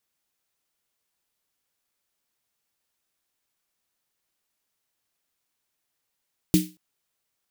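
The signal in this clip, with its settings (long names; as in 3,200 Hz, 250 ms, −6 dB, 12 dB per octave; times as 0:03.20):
synth snare length 0.23 s, tones 180 Hz, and 310 Hz, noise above 2,300 Hz, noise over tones −9.5 dB, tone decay 0.27 s, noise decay 0.30 s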